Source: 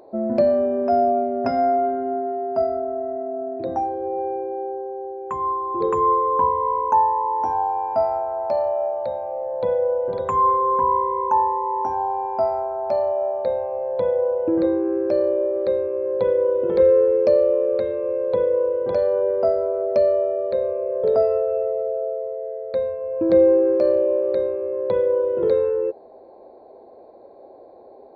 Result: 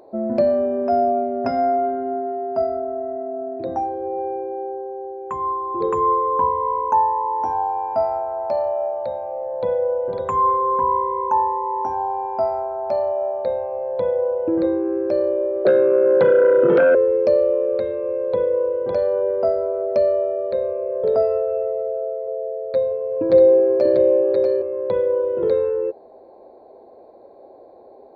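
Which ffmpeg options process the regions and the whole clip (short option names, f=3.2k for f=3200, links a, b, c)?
-filter_complex "[0:a]asettb=1/sr,asplit=3[a][b][c];[a]atrim=end=15.654[d];[b]atrim=start=15.65:end=16.95,asetpts=PTS-STARTPTS,afade=t=in:d=0.004:c=qsin,afade=t=out:st=1.296:d=0.004:c=qsin,aeval=exprs='0.531*sin(PI/2*2.51*val(0)/0.531)':c=same,highpass=f=130:w=0.5412,highpass=f=130:w=1.3066,equalizer=f=140:t=q:w=4:g=8,equalizer=f=270:t=q:w=4:g=4,equalizer=f=850:t=q:w=4:g=5,equalizer=f=1.3k:t=q:w=4:g=3,lowpass=f=3.8k:w=0.5412,lowpass=f=3.8k:w=1.3066,acrossover=split=620|1700[e][f][g];[e]acompressor=threshold=-13dB:ratio=4[h];[f]acompressor=threshold=-28dB:ratio=4[i];[g]acompressor=threshold=-33dB:ratio=4[j];[h][i][j]amix=inputs=3:normalize=0[k];[c]atrim=start=16.946[l];[d][k]acrossfade=d=0.004:c1=hsin:c2=qsin[m];[m][l]acrossfade=d=0.004:c1=qsin:c2=hsin,asettb=1/sr,asplit=3[n][o][p];[n]atrim=end=22.274[q];[o]atrim=start=22.27:end=24.62,asetpts=PTS-STARTPTS,afade=t=in:d=0.004:c=qsin,afade=t=out:st=2.346:d=0.004:c=qsin,aecho=1:1:7.3:0.71,atrim=end_sample=103635,aecho=1:1:641:0.596,atrim=end_sample=103635[r];[p]atrim=start=24.616[s];[q][r]acrossfade=d=0.004:c1=hsin:c2=qsin[t];[t][s]acrossfade=d=0.004:c1=qsin:c2=hsin"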